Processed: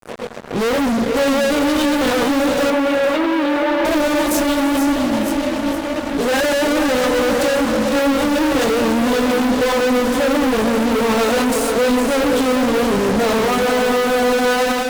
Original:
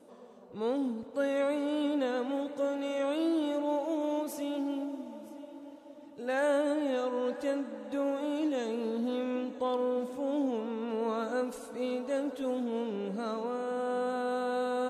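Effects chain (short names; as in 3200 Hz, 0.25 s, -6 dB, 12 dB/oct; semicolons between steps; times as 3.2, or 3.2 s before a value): chorus 1 Hz, delay 16.5 ms, depth 7 ms; notches 60/120/180/240/300/360/420/480/540/600 Hz; rotary speaker horn 7.5 Hz, later 0.9 Hz, at 9.73; fuzz box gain 58 dB, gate -58 dBFS; AGC gain up to 5 dB; 2.7–3.85 three-band isolator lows -14 dB, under 210 Hz, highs -23 dB, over 3600 Hz; lo-fi delay 0.462 s, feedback 35%, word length 6-bit, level -8 dB; gain -7.5 dB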